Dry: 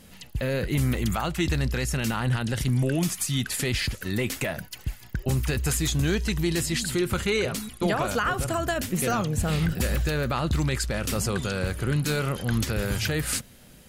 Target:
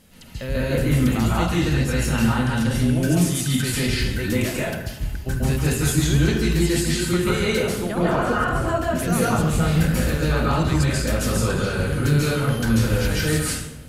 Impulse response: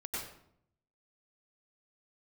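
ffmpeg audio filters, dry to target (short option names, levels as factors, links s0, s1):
-filter_complex "[0:a]asettb=1/sr,asplit=3[s0][s1][s2];[s0]atrim=end=7.814[s3];[s1]atrim=start=7.81:end=8.99,asetpts=PTS-STARTPTS,afade=t=in:d=0.004:c=qsin,afade=t=out:st=1.176:d=0.004:c=qsin,highshelf=f=3300:g=-10[s4];[s2]atrim=start=8.986[s5];[s3][s4]acrossfade=d=0.004:c1=hsin:c2=qsin[s6];[s6][s5]acrossfade=d=0.004:c1=qsin:c2=hsin[s7];[1:a]atrim=start_sample=2205,asetrate=29106,aresample=44100[s8];[s7][s8]afir=irnorm=-1:irlink=0"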